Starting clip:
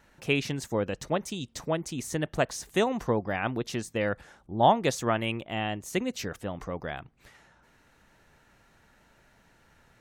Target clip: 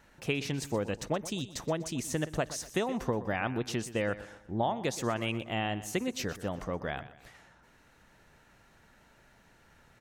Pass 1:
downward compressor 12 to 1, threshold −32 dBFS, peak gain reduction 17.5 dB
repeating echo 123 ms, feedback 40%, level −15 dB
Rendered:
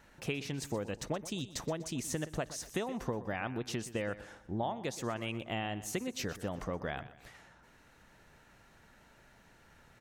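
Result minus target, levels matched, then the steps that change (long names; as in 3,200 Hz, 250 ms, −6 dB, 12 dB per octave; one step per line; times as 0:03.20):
downward compressor: peak gain reduction +5.5 dB
change: downward compressor 12 to 1, threshold −26 dBFS, peak gain reduction 12 dB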